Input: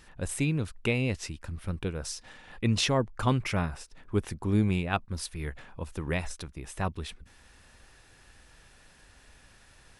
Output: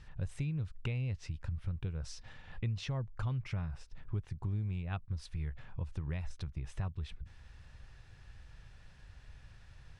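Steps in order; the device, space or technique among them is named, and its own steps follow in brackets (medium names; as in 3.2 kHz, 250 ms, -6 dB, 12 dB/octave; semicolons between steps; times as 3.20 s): jukebox (low-pass 5.3 kHz 12 dB/octave; resonant low shelf 180 Hz +10.5 dB, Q 1.5; compression 5:1, threshold -29 dBFS, peak gain reduction 15.5 dB); trim -5.5 dB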